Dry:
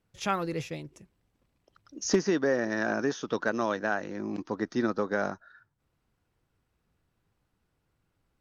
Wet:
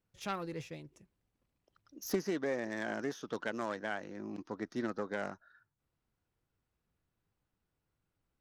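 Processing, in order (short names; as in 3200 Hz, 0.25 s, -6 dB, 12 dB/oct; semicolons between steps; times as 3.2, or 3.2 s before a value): self-modulated delay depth 0.11 ms; gain -8.5 dB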